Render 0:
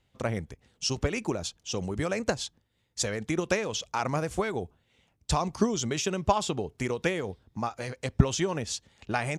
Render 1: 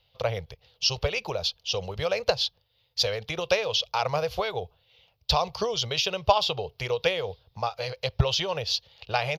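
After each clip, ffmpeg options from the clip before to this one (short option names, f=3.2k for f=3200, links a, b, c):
-af "firequalizer=gain_entry='entry(130,0);entry(260,-22);entry(480,6);entry(1800,-3);entry(2800,10);entry(4700,12);entry(8200,-25);entry(12000,7)':delay=0.05:min_phase=1"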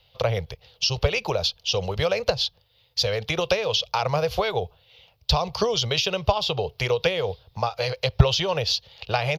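-filter_complex "[0:a]acrossover=split=330[a][b];[b]acompressor=threshold=-28dB:ratio=4[c];[a][c]amix=inputs=2:normalize=0,volume=7dB"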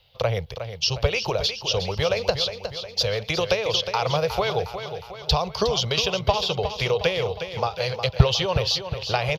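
-af "aecho=1:1:361|722|1083|1444|1805|2166:0.335|0.174|0.0906|0.0471|0.0245|0.0127"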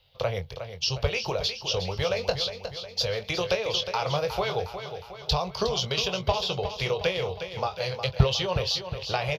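-filter_complex "[0:a]asplit=2[a][b];[b]adelay=22,volume=-8.5dB[c];[a][c]amix=inputs=2:normalize=0,volume=-4.5dB"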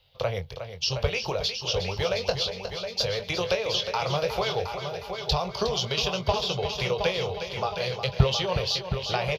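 -af "aecho=1:1:717|1434|2151|2868|3585:0.376|0.154|0.0632|0.0259|0.0106"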